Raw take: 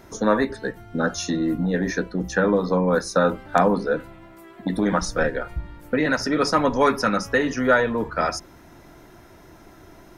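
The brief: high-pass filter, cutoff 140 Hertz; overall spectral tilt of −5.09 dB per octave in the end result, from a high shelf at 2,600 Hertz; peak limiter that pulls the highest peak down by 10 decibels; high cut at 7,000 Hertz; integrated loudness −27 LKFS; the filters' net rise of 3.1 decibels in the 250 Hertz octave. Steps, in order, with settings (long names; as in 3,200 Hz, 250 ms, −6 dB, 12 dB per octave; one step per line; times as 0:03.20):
high-pass filter 140 Hz
low-pass filter 7,000 Hz
parametric band 250 Hz +4.5 dB
high-shelf EQ 2,600 Hz +3.5 dB
level −3.5 dB
brickwall limiter −16 dBFS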